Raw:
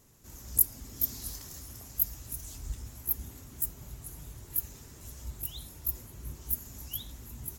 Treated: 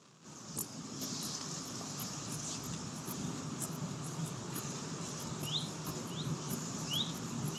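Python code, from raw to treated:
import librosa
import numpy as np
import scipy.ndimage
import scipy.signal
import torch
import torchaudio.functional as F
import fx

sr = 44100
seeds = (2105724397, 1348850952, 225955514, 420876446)

y = fx.rider(x, sr, range_db=5, speed_s=2.0)
y = fx.dmg_crackle(y, sr, seeds[0], per_s=260.0, level_db=-53.0)
y = fx.cabinet(y, sr, low_hz=150.0, low_slope=24, high_hz=7000.0, hz=(160.0, 1200.0, 2000.0), db=(9, 7, -6))
y = y + 10.0 ** (-10.0 / 20.0) * np.pad(y, (int(640 * sr / 1000.0), 0))[:len(y)]
y = y * 10.0 ** (6.5 / 20.0)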